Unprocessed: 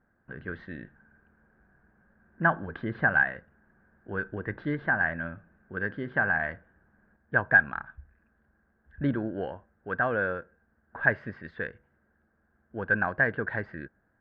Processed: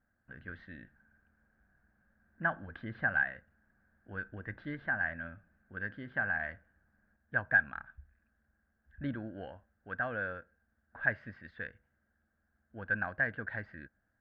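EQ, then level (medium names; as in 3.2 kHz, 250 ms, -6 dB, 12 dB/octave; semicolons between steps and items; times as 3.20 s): fifteen-band graphic EQ 160 Hz -6 dB, 400 Hz -11 dB, 1 kHz -7 dB; -5.0 dB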